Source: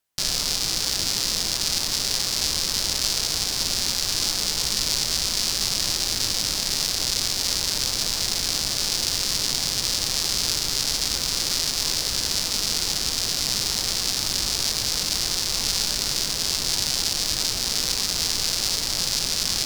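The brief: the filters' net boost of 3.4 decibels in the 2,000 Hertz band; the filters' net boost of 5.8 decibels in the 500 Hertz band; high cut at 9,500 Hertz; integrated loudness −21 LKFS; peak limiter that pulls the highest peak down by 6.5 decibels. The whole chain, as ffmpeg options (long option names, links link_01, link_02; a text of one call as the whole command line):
ffmpeg -i in.wav -af "lowpass=9500,equalizer=frequency=500:width_type=o:gain=7,equalizer=frequency=2000:width_type=o:gain=4,volume=4dB,alimiter=limit=-7dB:level=0:latency=1" out.wav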